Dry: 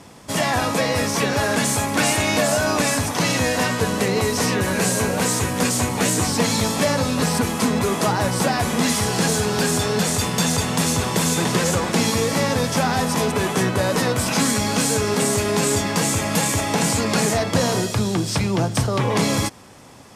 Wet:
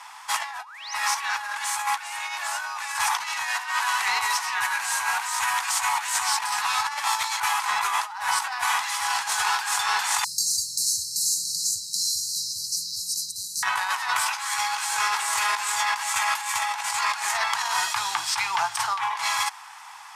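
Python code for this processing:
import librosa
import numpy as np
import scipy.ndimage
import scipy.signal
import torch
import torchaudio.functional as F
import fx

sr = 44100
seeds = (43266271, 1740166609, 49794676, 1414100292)

y = fx.spec_paint(x, sr, seeds[0], shape='rise', start_s=0.58, length_s=0.36, low_hz=590.0, high_hz=6600.0, level_db=-20.0)
y = fx.highpass(y, sr, hz=fx.line((3.46, 260.0), (3.99, 930.0)), slope=12, at=(3.46, 3.99), fade=0.02)
y = fx.brickwall_bandstop(y, sr, low_hz=270.0, high_hz=3900.0, at=(10.24, 13.63))
y = fx.edit(y, sr, fx.reverse_span(start_s=6.44, length_s=0.96), tone=tone)
y = scipy.signal.sosfilt(scipy.signal.ellip(4, 1.0, 40, 860.0, 'highpass', fs=sr, output='sos'), y)
y = fx.high_shelf(y, sr, hz=2200.0, db=-9.5)
y = fx.over_compress(y, sr, threshold_db=-33.0, ratio=-0.5)
y = y * librosa.db_to_amplitude(7.5)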